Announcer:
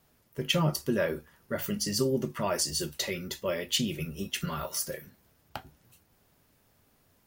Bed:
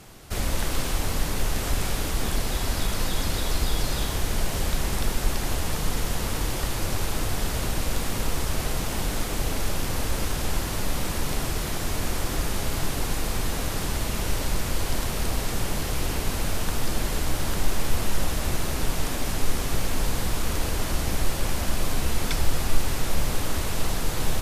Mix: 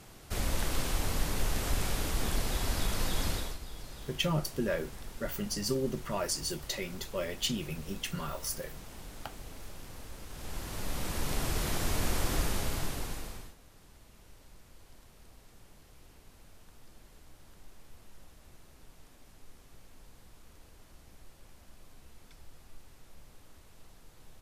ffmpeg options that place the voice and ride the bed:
-filter_complex "[0:a]adelay=3700,volume=0.631[s0];[1:a]volume=3.35,afade=t=out:st=3.29:d=0.29:silence=0.199526,afade=t=in:st=10.27:d=1.42:silence=0.158489,afade=t=out:st=12.37:d=1.18:silence=0.0473151[s1];[s0][s1]amix=inputs=2:normalize=0"

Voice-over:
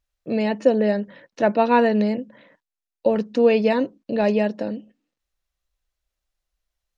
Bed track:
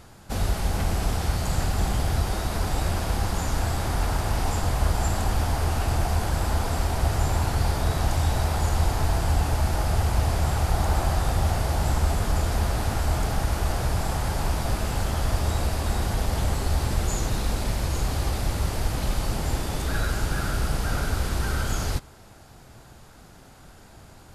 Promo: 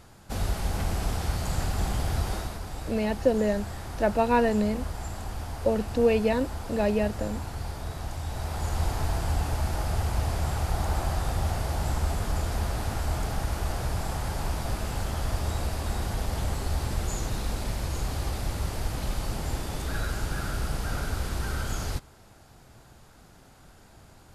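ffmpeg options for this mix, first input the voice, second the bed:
-filter_complex "[0:a]adelay=2600,volume=0.531[s0];[1:a]volume=1.41,afade=t=out:st=2.34:d=0.25:silence=0.421697,afade=t=in:st=8.24:d=0.61:silence=0.473151[s1];[s0][s1]amix=inputs=2:normalize=0"

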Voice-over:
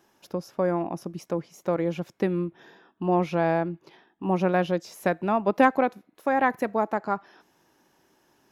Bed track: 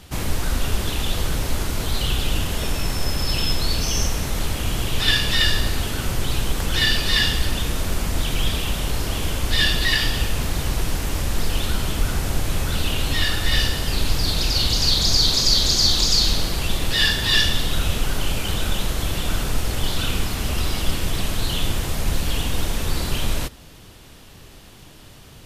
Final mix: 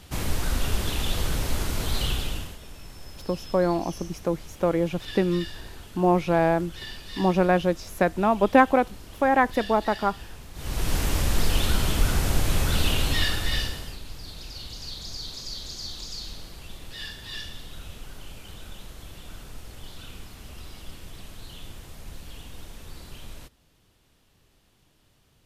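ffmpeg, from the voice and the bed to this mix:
-filter_complex "[0:a]adelay=2950,volume=1.33[s0];[1:a]volume=6.31,afade=t=out:st=2.03:d=0.55:silence=0.149624,afade=t=in:st=10.54:d=0.44:silence=0.105925,afade=t=out:st=12.88:d=1.11:silence=0.11885[s1];[s0][s1]amix=inputs=2:normalize=0"

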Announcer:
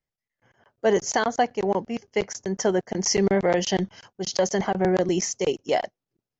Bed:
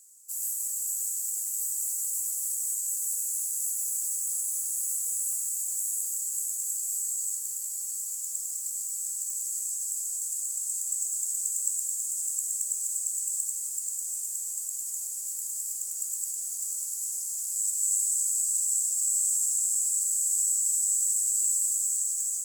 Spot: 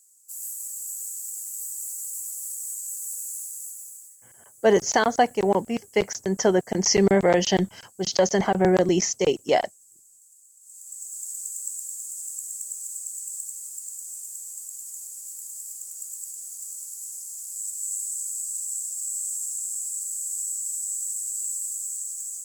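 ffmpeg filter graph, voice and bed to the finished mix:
-filter_complex "[0:a]adelay=3800,volume=1.33[s0];[1:a]volume=5.96,afade=t=out:st=3.3:d=0.87:silence=0.105925,afade=t=in:st=10.6:d=0.68:silence=0.11885[s1];[s0][s1]amix=inputs=2:normalize=0"

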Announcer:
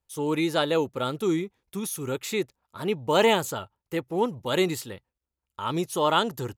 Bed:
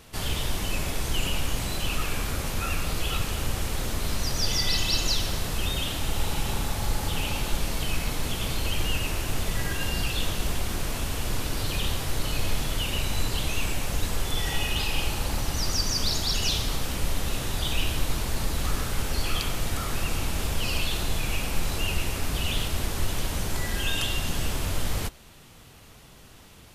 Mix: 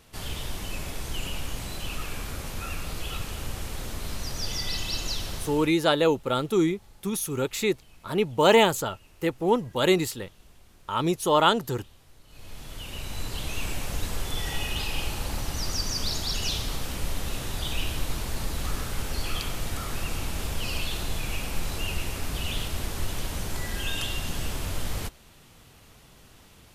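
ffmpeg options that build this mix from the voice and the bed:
-filter_complex "[0:a]adelay=5300,volume=1.33[s0];[1:a]volume=8.41,afade=t=out:st=5.38:d=0.38:silence=0.0841395,afade=t=in:st=12.27:d=1.46:silence=0.0630957[s1];[s0][s1]amix=inputs=2:normalize=0"

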